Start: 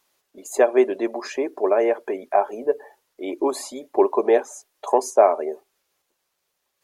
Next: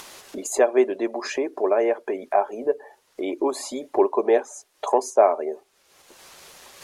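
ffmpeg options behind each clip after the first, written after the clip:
-af "lowpass=11000,acompressor=mode=upward:threshold=0.1:ratio=2.5,volume=0.841"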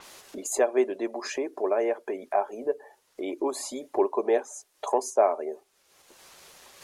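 -af "adynamicequalizer=threshold=0.00562:dfrequency=5500:dqfactor=0.7:tfrequency=5500:tqfactor=0.7:attack=5:release=100:ratio=0.375:range=2.5:mode=boostabove:tftype=highshelf,volume=0.562"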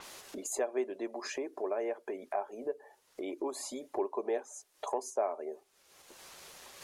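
-af "acompressor=threshold=0.00447:ratio=1.5"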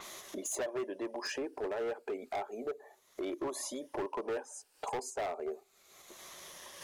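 -af "afftfilt=real='re*pow(10,7/40*sin(2*PI*(1.2*log(max(b,1)*sr/1024/100)/log(2)-(-0.33)*(pts-256)/sr)))':imag='im*pow(10,7/40*sin(2*PI*(1.2*log(max(b,1)*sr/1024/100)/log(2)-(-0.33)*(pts-256)/sr)))':win_size=1024:overlap=0.75,asoftclip=type=hard:threshold=0.0224,volume=1.12"

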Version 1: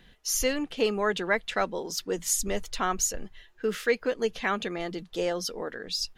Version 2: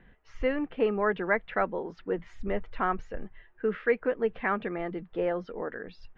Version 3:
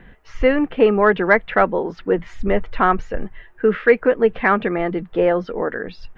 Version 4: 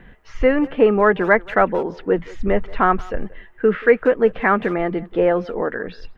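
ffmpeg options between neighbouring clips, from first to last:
-af "lowpass=f=2100:w=0.5412,lowpass=f=2100:w=1.3066"
-af "acontrast=89,volume=1.78"
-filter_complex "[0:a]acrossover=split=2600[s0][s1];[s1]acompressor=threshold=0.00794:ratio=4:attack=1:release=60[s2];[s0][s2]amix=inputs=2:normalize=0,asplit=2[s3][s4];[s4]adelay=180,highpass=300,lowpass=3400,asoftclip=type=hard:threshold=0.266,volume=0.1[s5];[s3][s5]amix=inputs=2:normalize=0"

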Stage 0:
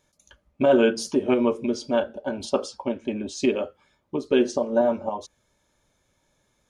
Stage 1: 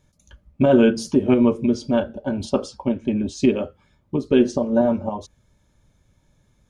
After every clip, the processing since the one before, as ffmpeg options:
-af "bass=f=250:g=14,treble=f=4000:g=-1"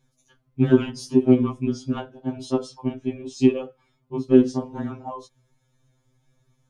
-af "aeval=exprs='0.668*(cos(1*acos(clip(val(0)/0.668,-1,1)))-cos(1*PI/2))+0.0473*(cos(3*acos(clip(val(0)/0.668,-1,1)))-cos(3*PI/2))':c=same,afftfilt=real='re*2.45*eq(mod(b,6),0)':imag='im*2.45*eq(mod(b,6),0)':win_size=2048:overlap=0.75"

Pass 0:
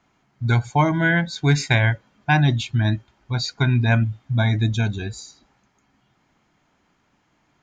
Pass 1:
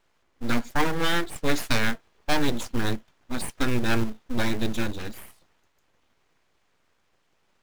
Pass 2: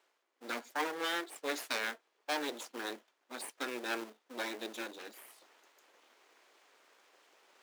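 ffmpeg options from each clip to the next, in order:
-filter_complex "[0:a]aeval=exprs='abs(val(0))':c=same,asplit=2[s0][s1];[s1]acrusher=bits=2:mode=log:mix=0:aa=0.000001,volume=0.562[s2];[s0][s2]amix=inputs=2:normalize=0,volume=0.473"
-af "highpass=f=340:w=0.5412,highpass=f=340:w=1.3066,areverse,acompressor=mode=upward:threshold=0.00794:ratio=2.5,areverse,volume=0.355"

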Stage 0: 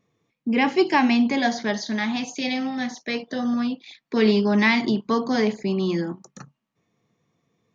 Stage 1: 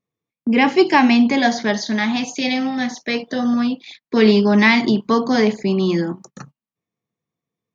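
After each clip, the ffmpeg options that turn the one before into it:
-af "agate=range=0.1:threshold=0.00501:ratio=16:detection=peak,volume=1.88"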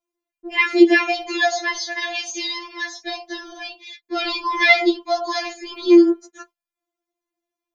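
-af "afftfilt=real='re*4*eq(mod(b,16),0)':imag='im*4*eq(mod(b,16),0)':win_size=2048:overlap=0.75,volume=1.41"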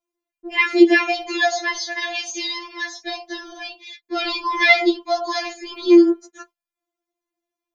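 -af anull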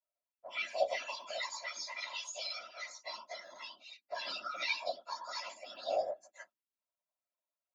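-filter_complex "[0:a]acrossover=split=270|3000[s0][s1][s2];[s1]acompressor=threshold=0.0398:ratio=4[s3];[s0][s3][s2]amix=inputs=3:normalize=0,afreqshift=290,afftfilt=real='hypot(re,im)*cos(2*PI*random(0))':imag='hypot(re,im)*sin(2*PI*random(1))':win_size=512:overlap=0.75,volume=0.398"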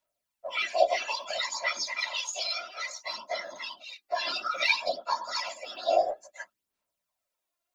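-af "aphaser=in_gain=1:out_gain=1:delay=2.9:decay=0.49:speed=0.59:type=sinusoidal,volume=2.51"

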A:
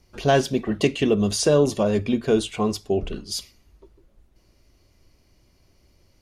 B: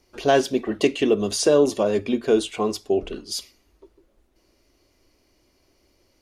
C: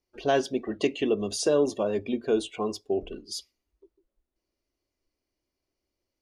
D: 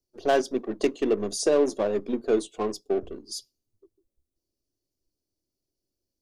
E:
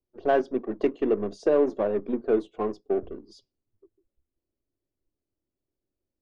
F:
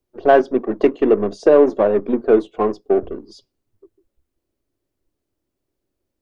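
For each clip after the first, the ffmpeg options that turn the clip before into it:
-af "lowshelf=f=220:t=q:w=1.5:g=-8"
-af "afftdn=nr=15:nf=-40,volume=0.501"
-filter_complex "[0:a]acrossover=split=170|3800[s0][s1][s2];[s0]aeval=exprs='abs(val(0))':c=same[s3];[s1]adynamicsmooth=sensitivity=3.5:basefreq=500[s4];[s3][s4][s2]amix=inputs=3:normalize=0,volume=1.26"
-af "lowpass=1900"
-af "equalizer=f=970:w=0.48:g=3,volume=2.51"

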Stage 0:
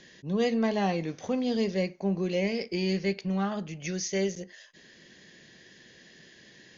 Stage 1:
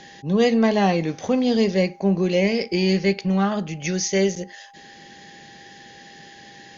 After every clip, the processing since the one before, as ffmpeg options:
-af "aeval=exprs='val(0)+0.00158*sin(2*PI*800*n/s)':c=same,volume=2.66"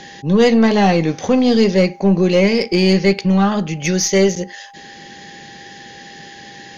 -af "acontrast=89,bandreject=f=650:w=17,aeval=exprs='0.708*(cos(1*acos(clip(val(0)/0.708,-1,1)))-cos(1*PI/2))+0.0316*(cos(4*acos(clip(val(0)/0.708,-1,1)))-cos(4*PI/2))':c=same"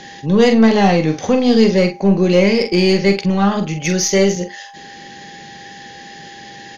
-filter_complex "[0:a]asplit=2[s0][s1];[s1]adelay=45,volume=0.398[s2];[s0][s2]amix=inputs=2:normalize=0"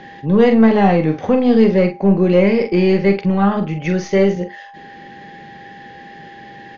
-af "lowpass=2100"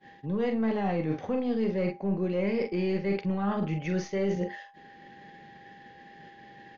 -af "agate=range=0.0224:threshold=0.0316:ratio=3:detection=peak,areverse,acompressor=threshold=0.0891:ratio=6,areverse,volume=0.562"

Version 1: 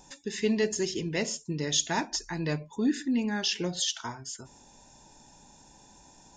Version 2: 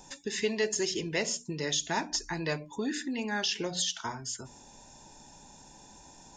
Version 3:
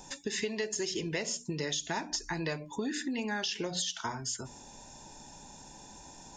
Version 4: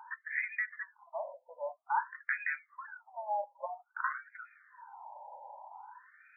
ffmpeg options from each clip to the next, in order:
-filter_complex "[0:a]bandreject=f=60:t=h:w=6,bandreject=f=120:t=h:w=6,bandreject=f=180:t=h:w=6,bandreject=f=240:t=h:w=6,bandreject=f=300:t=h:w=6,acrossover=split=410[s0][s1];[s0]acompressor=threshold=0.0112:ratio=6[s2];[s1]alimiter=limit=0.0841:level=0:latency=1:release=256[s3];[s2][s3]amix=inputs=2:normalize=0,volume=1.33"
-af "acompressor=threshold=0.0224:ratio=6,volume=1.33"
-af "afftfilt=real='re*between(b*sr/1024,700*pow(1800/700,0.5+0.5*sin(2*PI*0.51*pts/sr))/1.41,700*pow(1800/700,0.5+0.5*sin(2*PI*0.51*pts/sr))*1.41)':imag='im*between(b*sr/1024,700*pow(1800/700,0.5+0.5*sin(2*PI*0.51*pts/sr))/1.41,700*pow(1800/700,0.5+0.5*sin(2*PI*0.51*pts/sr))*1.41)':win_size=1024:overlap=0.75,volume=2.37"

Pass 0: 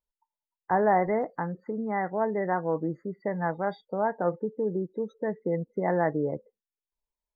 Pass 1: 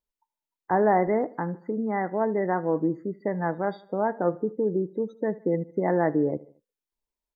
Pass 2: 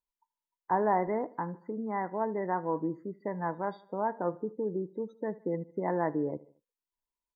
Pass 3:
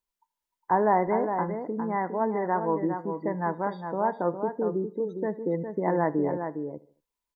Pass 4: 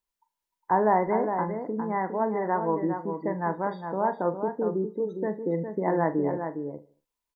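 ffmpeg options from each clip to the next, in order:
-af "equalizer=f=300:t=o:w=1:g=6.5,aecho=1:1:76|152|228:0.0891|0.0428|0.0205"
-af "equalizer=f=980:t=o:w=0.24:g=11.5,volume=0.422"
-filter_complex "[0:a]asplit=2[s0][s1];[s1]adelay=408.2,volume=0.447,highshelf=f=4000:g=-9.18[s2];[s0][s2]amix=inputs=2:normalize=0,volume=1.68"
-filter_complex "[0:a]asplit=2[s0][s1];[s1]adelay=42,volume=0.237[s2];[s0][s2]amix=inputs=2:normalize=0"

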